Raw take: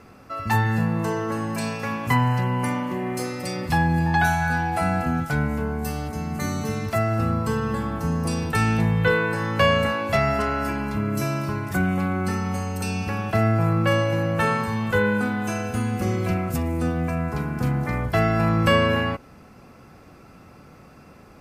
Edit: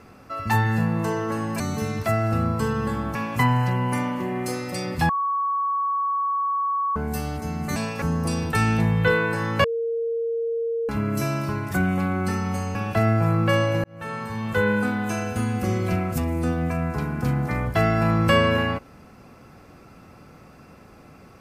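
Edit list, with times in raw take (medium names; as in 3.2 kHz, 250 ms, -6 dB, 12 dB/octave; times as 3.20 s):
1.60–1.86 s: swap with 6.47–8.02 s
3.80–5.67 s: bleep 1.12 kHz -21 dBFS
9.64–10.89 s: bleep 461 Hz -22.5 dBFS
12.75–13.13 s: delete
14.22–15.07 s: fade in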